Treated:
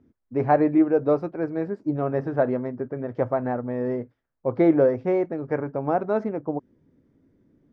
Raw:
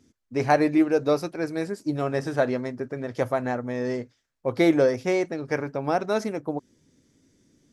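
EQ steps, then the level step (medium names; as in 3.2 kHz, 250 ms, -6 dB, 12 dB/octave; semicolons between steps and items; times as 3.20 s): low-pass 1.2 kHz 12 dB/octave; +1.5 dB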